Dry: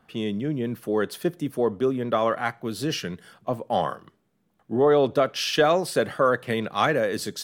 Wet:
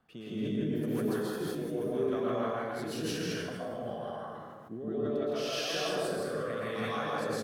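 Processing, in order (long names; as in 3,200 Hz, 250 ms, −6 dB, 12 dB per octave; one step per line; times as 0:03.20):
downward compressor 6 to 1, threshold −32 dBFS, peak gain reduction 16 dB
loudspeakers that aren't time-aligned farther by 56 metres 0 dB, 96 metres −10 dB
rotating-speaker cabinet horn 0.85 Hz
dense smooth reverb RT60 1.3 s, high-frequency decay 0.6×, pre-delay 105 ms, DRR −7.5 dB
level that may fall only so fast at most 26 dB per second
level −8 dB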